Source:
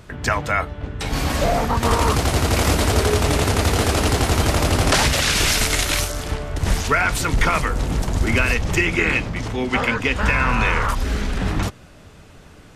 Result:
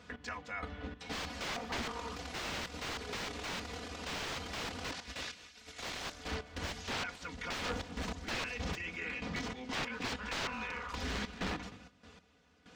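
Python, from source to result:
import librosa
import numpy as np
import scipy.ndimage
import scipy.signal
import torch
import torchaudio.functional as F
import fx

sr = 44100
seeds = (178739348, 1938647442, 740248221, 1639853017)

y = scipy.signal.sosfilt(scipy.signal.butter(4, 65.0, 'highpass', fs=sr, output='sos'), x)
y = librosa.effects.preemphasis(y, coef=0.8, zi=[0.0])
y = fx.hum_notches(y, sr, base_hz=50, count=6)
y = y + 0.87 * np.pad(y, (int(4.1 * sr / 1000.0), 0))[:len(y)]
y = fx.over_compress(y, sr, threshold_db=-27.0, ratio=-0.5)
y = fx.step_gate(y, sr, bpm=96, pattern='x...xx.x.x.', floor_db=-12.0, edge_ms=4.5)
y = (np.mod(10.0 ** (26.5 / 20.0) * y + 1.0, 2.0) - 1.0) / 10.0 ** (26.5 / 20.0)
y = fx.air_absorb(y, sr, metres=170.0)
y = y + 10.0 ** (-19.0 / 20.0) * np.pad(y, (int(206 * sr / 1000.0), 0))[:len(y)]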